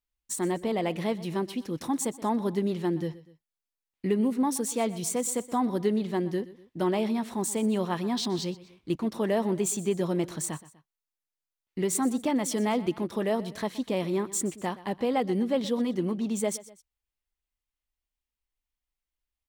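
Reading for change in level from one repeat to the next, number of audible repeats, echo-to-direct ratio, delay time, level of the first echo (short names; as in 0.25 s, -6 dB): -7.0 dB, 2, -17.0 dB, 0.123 s, -18.0 dB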